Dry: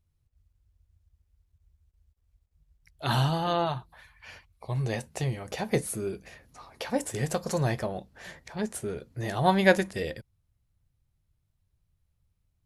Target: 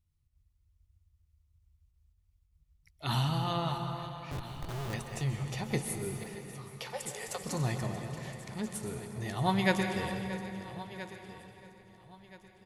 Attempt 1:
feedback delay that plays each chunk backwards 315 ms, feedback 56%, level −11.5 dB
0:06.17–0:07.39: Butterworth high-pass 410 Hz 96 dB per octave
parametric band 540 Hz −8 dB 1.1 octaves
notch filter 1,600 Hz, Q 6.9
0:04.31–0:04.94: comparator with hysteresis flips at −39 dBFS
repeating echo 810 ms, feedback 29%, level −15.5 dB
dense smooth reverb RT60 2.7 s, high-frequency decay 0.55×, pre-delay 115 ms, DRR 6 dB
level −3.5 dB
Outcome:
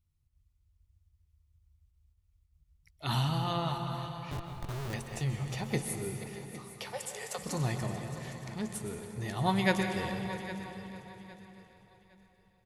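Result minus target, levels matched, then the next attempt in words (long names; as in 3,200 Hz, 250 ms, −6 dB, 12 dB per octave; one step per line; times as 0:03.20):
echo 515 ms early
feedback delay that plays each chunk backwards 315 ms, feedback 56%, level −11.5 dB
0:06.17–0:07.39: Butterworth high-pass 410 Hz 96 dB per octave
parametric band 540 Hz −8 dB 1.1 octaves
notch filter 1,600 Hz, Q 6.9
0:04.31–0:04.94: comparator with hysteresis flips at −39 dBFS
repeating echo 1,325 ms, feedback 29%, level −15.5 dB
dense smooth reverb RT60 2.7 s, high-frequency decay 0.55×, pre-delay 115 ms, DRR 6 dB
level −3.5 dB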